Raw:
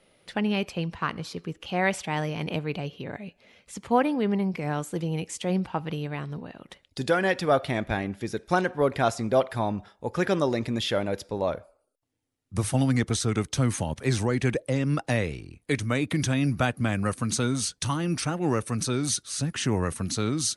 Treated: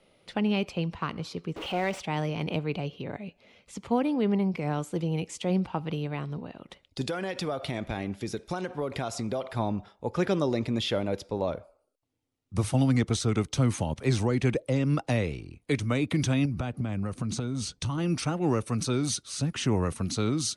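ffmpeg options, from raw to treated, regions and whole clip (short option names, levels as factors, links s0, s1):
-filter_complex "[0:a]asettb=1/sr,asplit=3[s0][s1][s2];[s0]atrim=end=1.564[s3];[s1]atrim=start=1.56:end=2,asetpts=PTS-STARTPTS,afade=t=in:d=0.004:c=qsin,afade=t=out:st=0.436:d=0.004:c=qsin,aeval=exprs='val(0)+0.5*0.0355*sgn(val(0))':c=same,bass=f=250:g=-9,treble=f=4000:g=-11[s4];[s2]atrim=start=1.996[s5];[s3][s4]acrossfade=d=0.004:c1=hsin:c2=qsin[s6];[s6][s5]acrossfade=d=0.004:c1=qsin:c2=hsin,asettb=1/sr,asplit=3[s7][s8][s9];[s7]atrim=end=7.014[s10];[s8]atrim=start=7.01:end=9.51,asetpts=PTS-STARTPTS,afade=t=in:d=0.004:c=qsin,afade=t=out:st=2.496:d=0.004:c=qsin,highshelf=f=4000:g=7,acompressor=threshold=0.0501:ratio=10:attack=3.2:release=140:knee=1:detection=peak[s11];[s9]atrim=start=9.506[s12];[s10][s11]acrossfade=d=0.004:c1=hsin:c2=qsin[s13];[s13][s12]acrossfade=d=0.004:c1=qsin:c2=hsin,asettb=1/sr,asplit=3[s14][s15][s16];[s14]atrim=end=16.454[s17];[s15]atrim=start=16.45:end=17.98,asetpts=PTS-STARTPTS,afade=t=in:d=0.004:c=qsin,afade=t=out:st=1.526:d=0.004:c=qsin,lowpass=9900,lowshelf=f=420:g=7.5,acompressor=threshold=0.0501:ratio=12:attack=3.2:release=140:knee=1:detection=peak[s18];[s16]atrim=start=17.976[s19];[s17][s18]acrossfade=d=0.004:c1=hsin:c2=qsin[s20];[s20][s19]acrossfade=d=0.004:c1=qsin:c2=hsin,equalizer=f=1700:t=o:w=0.39:g=-6,acrossover=split=410|3000[s21][s22][s23];[s22]acompressor=threshold=0.0398:ratio=6[s24];[s21][s24][s23]amix=inputs=3:normalize=0,highshelf=f=8900:g=-11.5"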